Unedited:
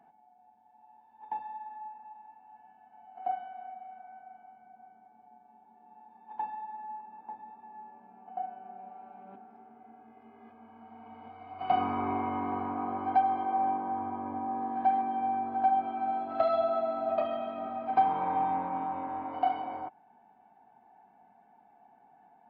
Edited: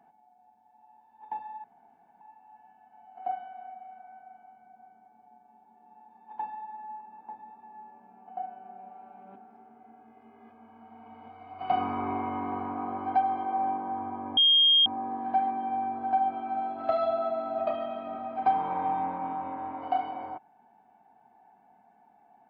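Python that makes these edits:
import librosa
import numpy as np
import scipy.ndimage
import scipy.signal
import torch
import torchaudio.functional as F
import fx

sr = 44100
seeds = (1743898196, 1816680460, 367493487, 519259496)

y = fx.edit(x, sr, fx.room_tone_fill(start_s=1.64, length_s=0.57),
    fx.insert_tone(at_s=14.37, length_s=0.49, hz=3230.0, db=-17.0), tone=tone)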